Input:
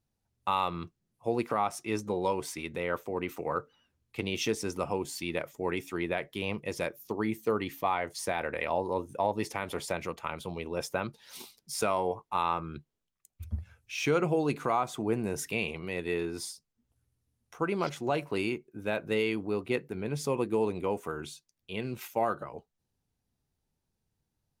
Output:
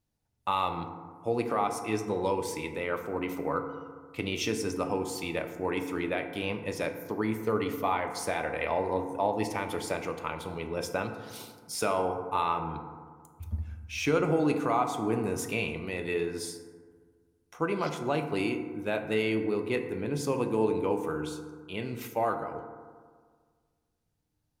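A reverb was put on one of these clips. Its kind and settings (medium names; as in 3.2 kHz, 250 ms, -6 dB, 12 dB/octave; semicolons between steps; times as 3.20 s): FDN reverb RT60 1.7 s, low-frequency decay 1.1×, high-frequency decay 0.35×, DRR 5.5 dB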